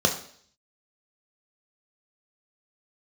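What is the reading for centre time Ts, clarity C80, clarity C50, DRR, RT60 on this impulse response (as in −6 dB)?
16 ms, 13.5 dB, 10.0 dB, 2.5 dB, 0.55 s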